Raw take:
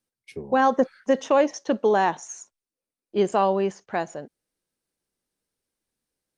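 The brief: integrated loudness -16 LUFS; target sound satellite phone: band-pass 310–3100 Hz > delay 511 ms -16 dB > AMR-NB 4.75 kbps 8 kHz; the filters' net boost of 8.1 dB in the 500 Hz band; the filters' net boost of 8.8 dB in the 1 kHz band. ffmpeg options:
-af "highpass=310,lowpass=3100,equalizer=f=500:t=o:g=8,equalizer=f=1000:t=o:g=8.5,aecho=1:1:511:0.158" -ar 8000 -c:a libopencore_amrnb -b:a 4750

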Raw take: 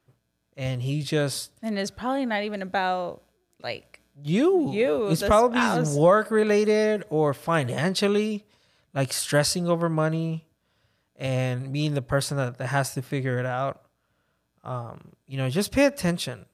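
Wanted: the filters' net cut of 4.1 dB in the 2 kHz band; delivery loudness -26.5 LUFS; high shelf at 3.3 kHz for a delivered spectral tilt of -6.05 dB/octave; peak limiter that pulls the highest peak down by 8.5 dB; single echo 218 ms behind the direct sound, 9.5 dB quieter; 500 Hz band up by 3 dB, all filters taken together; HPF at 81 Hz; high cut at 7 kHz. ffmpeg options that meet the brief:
-af "highpass=81,lowpass=7000,equalizer=f=500:t=o:g=4,equalizer=f=2000:t=o:g=-4.5,highshelf=f=3300:g=-4.5,alimiter=limit=0.2:level=0:latency=1,aecho=1:1:218:0.335,volume=0.841"

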